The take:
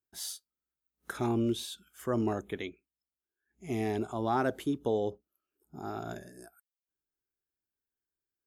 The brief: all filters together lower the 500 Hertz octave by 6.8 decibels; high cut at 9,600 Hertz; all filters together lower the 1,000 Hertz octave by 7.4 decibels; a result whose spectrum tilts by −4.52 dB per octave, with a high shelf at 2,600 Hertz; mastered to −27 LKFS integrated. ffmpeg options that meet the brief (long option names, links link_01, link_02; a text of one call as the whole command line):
ffmpeg -i in.wav -af "lowpass=9600,equalizer=frequency=500:width_type=o:gain=-8,equalizer=frequency=1000:width_type=o:gain=-8,highshelf=frequency=2600:gain=6,volume=10dB" out.wav